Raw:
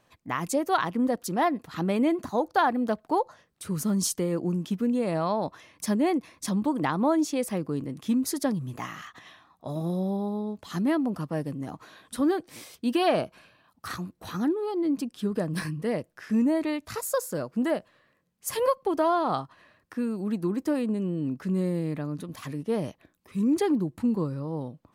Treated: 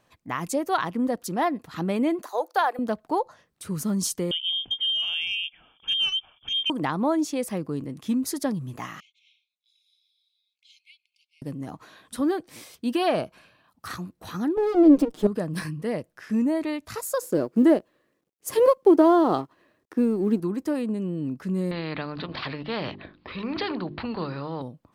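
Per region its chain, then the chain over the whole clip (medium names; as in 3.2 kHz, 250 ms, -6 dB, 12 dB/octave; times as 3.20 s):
2.22–2.79 s: steep high-pass 400 Hz + treble shelf 11 kHz +9.5 dB
4.31–6.70 s: peaking EQ 1.5 kHz -10.5 dB 1.3 oct + frequency inversion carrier 3.4 kHz + transformer saturation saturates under 990 Hz
9.00–11.42 s: brick-wall FIR high-pass 2.1 kHz + tape spacing loss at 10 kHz 25 dB
14.57–15.27 s: comb filter that takes the minimum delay 6.5 ms + peaking EQ 350 Hz +13 dB 2.4 oct
17.22–20.40 s: companding laws mixed up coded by A + peaking EQ 350 Hz +13.5 dB 1.3 oct
21.71–24.62 s: steep low-pass 4.6 kHz 72 dB/octave + hum notches 50/100/150/200/250/300/350/400 Hz + spectrum-flattening compressor 2:1
whole clip: none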